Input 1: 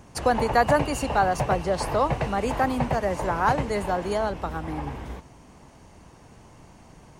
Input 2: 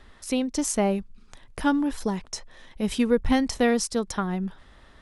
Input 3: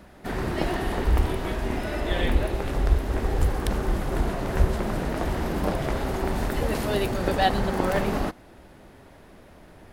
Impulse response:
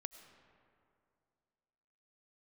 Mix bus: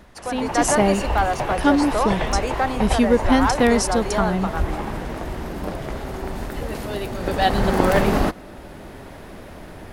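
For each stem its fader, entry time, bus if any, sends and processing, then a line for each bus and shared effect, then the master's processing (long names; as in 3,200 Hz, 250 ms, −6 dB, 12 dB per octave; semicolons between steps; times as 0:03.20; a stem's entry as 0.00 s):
−11.5 dB, 0.00 s, no send, echo send −13.5 dB, mid-hump overdrive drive 12 dB, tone 4,100 Hz, clips at −9.5 dBFS
−4.5 dB, 0.00 s, no send, no echo send, no processing
−0.5 dB, 0.00 s, send −11.5 dB, no echo send, automatic ducking −22 dB, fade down 0.40 s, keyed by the first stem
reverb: on, RT60 2.5 s, pre-delay 60 ms
echo: single-tap delay 298 ms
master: automatic gain control gain up to 10 dB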